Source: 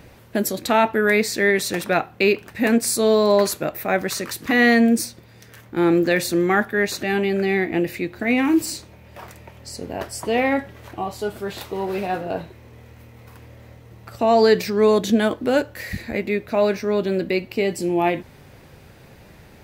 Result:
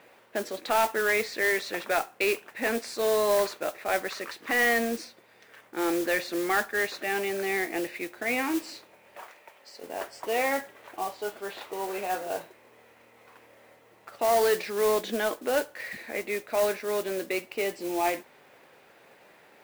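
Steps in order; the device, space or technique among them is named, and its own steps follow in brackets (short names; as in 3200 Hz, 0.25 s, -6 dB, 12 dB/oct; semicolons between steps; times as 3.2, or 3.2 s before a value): 9.22–9.83 HPF 530 Hz 6 dB/oct; carbon microphone (BPF 470–3300 Hz; soft clip -12.5 dBFS, distortion -18 dB; modulation noise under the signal 13 dB); gain -3.5 dB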